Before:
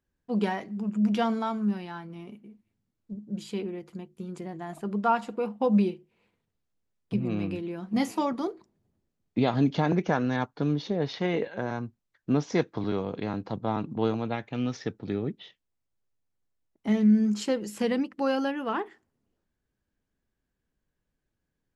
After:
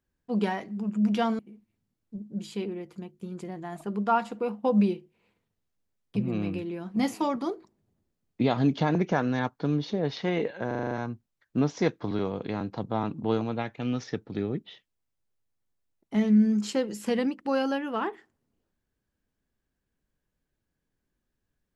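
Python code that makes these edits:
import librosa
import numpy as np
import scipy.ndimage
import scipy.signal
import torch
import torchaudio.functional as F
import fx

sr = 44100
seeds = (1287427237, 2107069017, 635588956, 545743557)

y = fx.edit(x, sr, fx.cut(start_s=1.39, length_s=0.97),
    fx.stutter(start_s=11.64, slice_s=0.04, count=7), tone=tone)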